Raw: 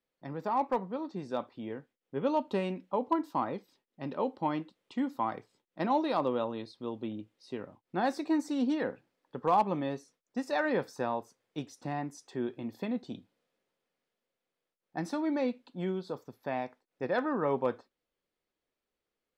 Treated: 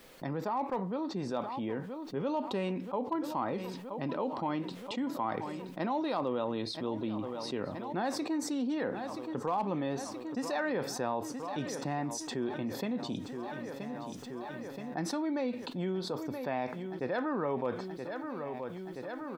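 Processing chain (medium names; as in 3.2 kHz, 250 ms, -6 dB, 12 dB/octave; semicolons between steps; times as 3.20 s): on a send: feedback delay 975 ms, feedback 58%, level -21 dB; on the sum: level flattener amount 70%; trim -7.5 dB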